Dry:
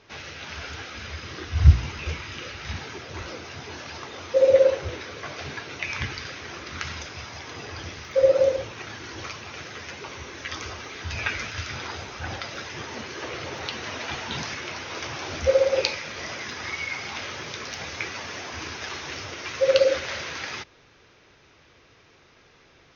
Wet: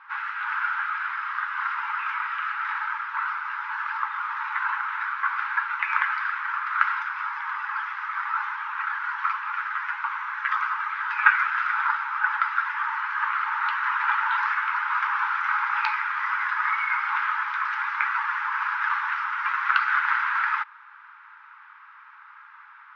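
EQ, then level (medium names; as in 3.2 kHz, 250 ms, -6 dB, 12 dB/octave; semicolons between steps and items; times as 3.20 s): brick-wall FIR high-pass 820 Hz; resonant low-pass 1.4 kHz, resonance Q 3.5; distance through air 87 m; +7.0 dB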